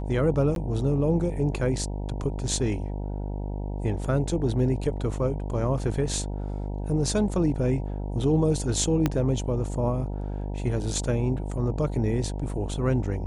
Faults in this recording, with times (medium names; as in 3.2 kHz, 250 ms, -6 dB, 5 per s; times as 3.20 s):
buzz 50 Hz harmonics 19 -31 dBFS
0.55–0.56 s: dropout 12 ms
9.06 s: pop -10 dBFS